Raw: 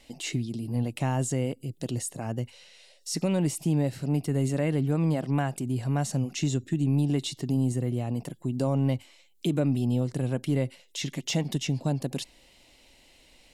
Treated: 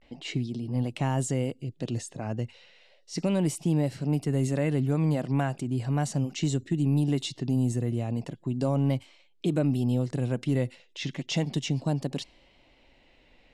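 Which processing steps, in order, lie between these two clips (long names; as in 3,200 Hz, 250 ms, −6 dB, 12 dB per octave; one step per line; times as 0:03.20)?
pitch vibrato 0.35 Hz 56 cents
low-pass that shuts in the quiet parts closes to 2,400 Hz, open at −21 dBFS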